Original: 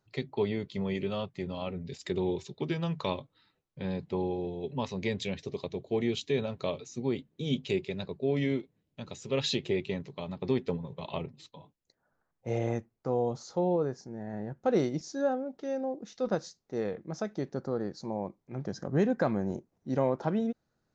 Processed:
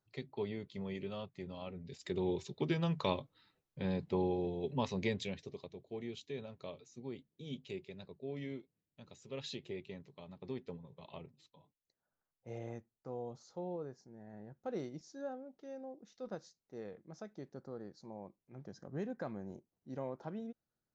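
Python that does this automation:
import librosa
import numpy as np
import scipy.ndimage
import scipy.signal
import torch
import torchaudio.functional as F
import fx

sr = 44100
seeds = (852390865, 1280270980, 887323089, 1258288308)

y = fx.gain(x, sr, db=fx.line((1.79, -9.5), (2.52, -2.0), (4.99, -2.0), (5.76, -14.0)))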